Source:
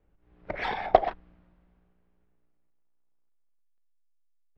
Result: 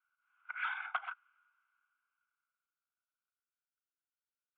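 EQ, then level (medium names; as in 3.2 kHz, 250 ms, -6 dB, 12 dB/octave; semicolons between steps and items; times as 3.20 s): ladder high-pass 1.4 kHz, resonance 85%; brick-wall FIR low-pass 4.3 kHz; static phaser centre 2.7 kHz, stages 8; +5.5 dB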